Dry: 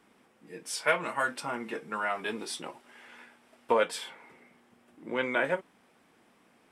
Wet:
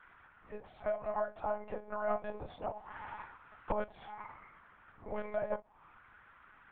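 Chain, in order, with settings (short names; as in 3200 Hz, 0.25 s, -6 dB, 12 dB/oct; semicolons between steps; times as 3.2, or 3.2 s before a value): 1.09–3.15 bell 700 Hz +4.5 dB 1.9 oct; compressor 4:1, threshold -41 dBFS, peak gain reduction 17.5 dB; auto-wah 680–1600 Hz, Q 3.8, down, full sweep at -43 dBFS; monotone LPC vocoder at 8 kHz 210 Hz; gain +13.5 dB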